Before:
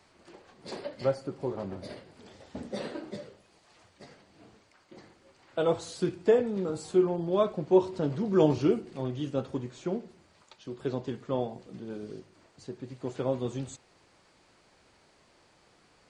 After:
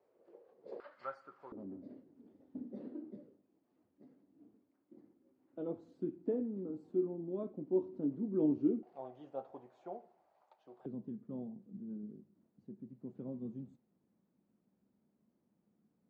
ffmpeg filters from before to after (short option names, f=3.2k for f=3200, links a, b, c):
-af "asetnsamples=n=441:p=0,asendcmd='0.8 bandpass f 1300;1.52 bandpass f 270;8.83 bandpass f 730;10.86 bandpass f 210',bandpass=f=480:t=q:w=4.9:csg=0"